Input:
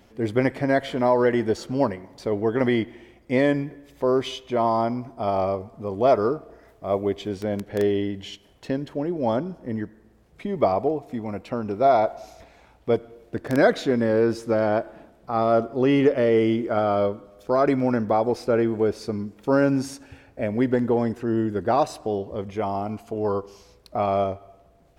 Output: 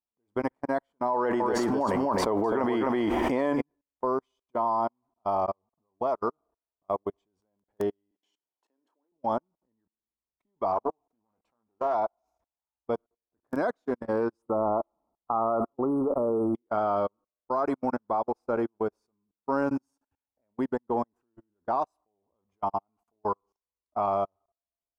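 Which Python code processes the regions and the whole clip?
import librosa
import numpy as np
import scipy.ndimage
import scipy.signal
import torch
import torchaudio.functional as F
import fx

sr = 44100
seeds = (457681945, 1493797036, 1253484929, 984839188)

y = fx.chain(x, sr, fx.bass_treble(bass_db=-6, treble_db=-4),
    fx.echo_single(ms=258, db=-5.5),
    fx.env_flatten(amount_pct=100), at=(1.14, 3.61))
y = fx.chain(y, sr, fx.highpass(hz=270.0, slope=24),
    fx.doubler(ms=29.0, db=-12.0), at=(8.11, 9.12))
y = fx.chain(y, sr, fx.doubler(ms=18.0, db=-9.0),
    fx.doppler_dist(depth_ms=0.28), at=(10.72, 11.95))
y = fx.chain(y, sr, fx.transient(attack_db=2, sustain_db=8),
    fx.brickwall_bandstop(low_hz=1400.0, high_hz=8100.0), at=(14.42, 16.55))
y = fx.graphic_eq(y, sr, hz=(125, 500, 1000, 2000, 4000), db=(-9, -5, 11, -9, -7))
y = fx.level_steps(y, sr, step_db=24)
y = fx.upward_expand(y, sr, threshold_db=-43.0, expansion=2.5)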